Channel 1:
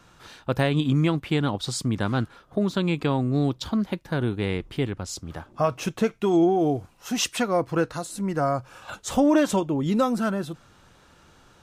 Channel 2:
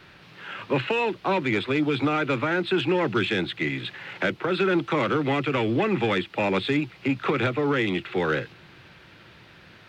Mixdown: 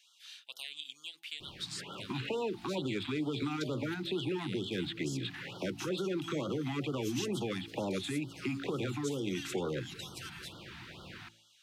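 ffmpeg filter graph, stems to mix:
ffmpeg -i stem1.wav -i stem2.wav -filter_complex "[0:a]highpass=frequency=3000:width_type=q:width=1.8,volume=-5.5dB[link_01];[1:a]alimiter=limit=-21.5dB:level=0:latency=1:release=155,adelay=1400,volume=2.5dB[link_02];[link_01][link_02]amix=inputs=2:normalize=0,bandreject=frequency=55.42:width_type=h:width=4,bandreject=frequency=110.84:width_type=h:width=4,bandreject=frequency=166.26:width_type=h:width=4,bandreject=frequency=221.68:width_type=h:width=4,bandreject=frequency=277.1:width_type=h:width=4,bandreject=frequency=332.52:width_type=h:width=4,bandreject=frequency=387.94:width_type=h:width=4,bandreject=frequency=443.36:width_type=h:width=4,bandreject=frequency=498.78:width_type=h:width=4,bandreject=frequency=554.2:width_type=h:width=4,bandreject=frequency=609.62:width_type=h:width=4,bandreject=frequency=665.04:width_type=h:width=4,bandreject=frequency=720.46:width_type=h:width=4,bandreject=frequency=775.88:width_type=h:width=4,bandreject=frequency=831.3:width_type=h:width=4,bandreject=frequency=886.72:width_type=h:width=4,acrossover=split=560|4200[link_03][link_04][link_05];[link_03]acompressor=threshold=-33dB:ratio=4[link_06];[link_04]acompressor=threshold=-44dB:ratio=4[link_07];[link_05]acompressor=threshold=-45dB:ratio=4[link_08];[link_06][link_07][link_08]amix=inputs=3:normalize=0,afftfilt=real='re*(1-between(b*sr/1024,460*pow(2100/460,0.5+0.5*sin(2*PI*2.2*pts/sr))/1.41,460*pow(2100/460,0.5+0.5*sin(2*PI*2.2*pts/sr))*1.41))':imag='im*(1-between(b*sr/1024,460*pow(2100/460,0.5+0.5*sin(2*PI*2.2*pts/sr))/1.41,460*pow(2100/460,0.5+0.5*sin(2*PI*2.2*pts/sr))*1.41))':win_size=1024:overlap=0.75" out.wav

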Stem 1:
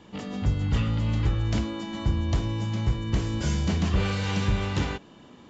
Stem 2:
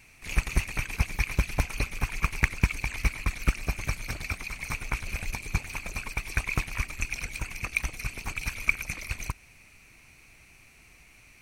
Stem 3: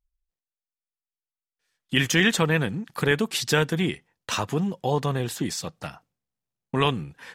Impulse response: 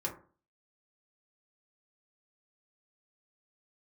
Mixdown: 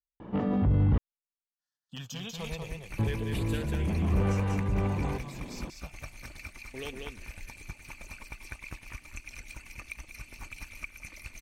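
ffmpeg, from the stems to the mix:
-filter_complex "[0:a]acontrast=55,alimiter=limit=-19.5dB:level=0:latency=1:release=12,lowpass=1200,adelay=200,volume=1dB,asplit=3[link_01][link_02][link_03];[link_01]atrim=end=0.98,asetpts=PTS-STARTPTS,afade=type=out:start_time=0.976:duration=0.004:curve=hsin[link_04];[link_02]atrim=start=0.98:end=2.99,asetpts=PTS-STARTPTS,volume=0[link_05];[link_03]atrim=start=2.99,asetpts=PTS-STARTPTS,afade=type=in:duration=0.004:curve=hsin[link_06];[link_04][link_05][link_06]concat=n=3:v=0:a=1[link_07];[1:a]aecho=1:1:3.4:0.32,acompressor=threshold=-29dB:ratio=3,adelay=2150,volume=-13dB,asplit=2[link_08][link_09];[link_09]volume=-10.5dB[link_10];[2:a]asoftclip=type=hard:threshold=-10dB,asplit=2[link_11][link_12];[link_12]afreqshift=-0.29[link_13];[link_11][link_13]amix=inputs=2:normalize=1,volume=-18.5dB,asplit=3[link_14][link_15][link_16];[link_15]volume=-3.5dB[link_17];[link_16]apad=whole_len=251352[link_18];[link_07][link_18]sidechaincompress=threshold=-47dB:ratio=8:attack=8.7:release=954[link_19];[link_10][link_17]amix=inputs=2:normalize=0,aecho=0:1:192:1[link_20];[link_19][link_08][link_14][link_20]amix=inputs=4:normalize=0,dynaudnorm=framelen=150:gausssize=17:maxgain=3.5dB,adynamicequalizer=threshold=0.00141:dfrequency=1400:dqfactor=3.1:tfrequency=1400:tqfactor=3.1:attack=5:release=100:ratio=0.375:range=2:mode=cutabove:tftype=bell"

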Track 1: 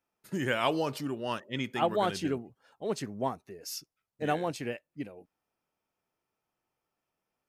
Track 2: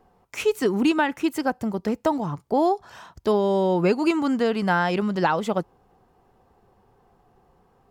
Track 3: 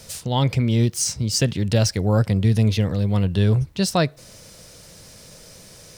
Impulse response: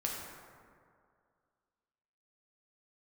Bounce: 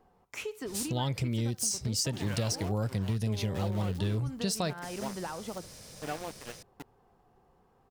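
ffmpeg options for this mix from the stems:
-filter_complex "[0:a]aeval=exprs='val(0)*gte(abs(val(0)),0.0299)':channel_layout=same,adelay=1800,volume=-7dB[link_01];[1:a]acompressor=threshold=-31dB:ratio=5,volume=-5.5dB,asplit=2[link_02][link_03];[link_03]volume=-19.5dB[link_04];[2:a]adynamicequalizer=threshold=0.01:dfrequency=4400:dqfactor=0.7:tfrequency=4400:tqfactor=0.7:attack=5:release=100:ratio=0.375:range=3.5:mode=boostabove:tftype=highshelf,adelay=650,volume=-5dB[link_05];[link_04]aecho=0:1:69|138|207|276|345:1|0.37|0.137|0.0507|0.0187[link_06];[link_01][link_02][link_05][link_06]amix=inputs=4:normalize=0,acompressor=threshold=-28dB:ratio=6"

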